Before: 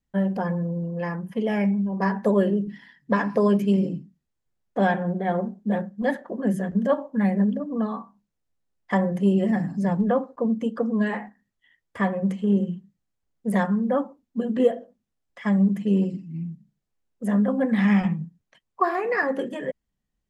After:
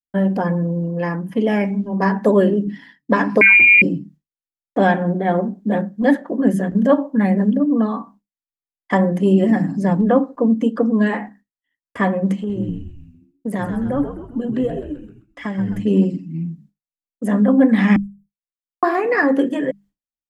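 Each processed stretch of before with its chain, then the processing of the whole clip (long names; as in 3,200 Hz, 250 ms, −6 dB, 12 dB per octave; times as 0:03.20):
0:03.41–0:03.82: double-tracking delay 30 ms −11.5 dB + voice inversion scrambler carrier 2,600 Hz + envelope flattener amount 100%
0:12.36–0:15.80: downward compressor 2.5 to 1, threshold −29 dBFS + echo with shifted repeats 130 ms, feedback 52%, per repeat −91 Hz, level −8 dB
0:17.96–0:18.83: inverse Chebyshev band-stop filter 290–2,400 Hz, stop band 80 dB + bass and treble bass −2 dB, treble −4 dB
whole clip: mains-hum notches 50/100/150/200 Hz; downward expander −47 dBFS; parametric band 290 Hz +10.5 dB 0.32 octaves; level +6 dB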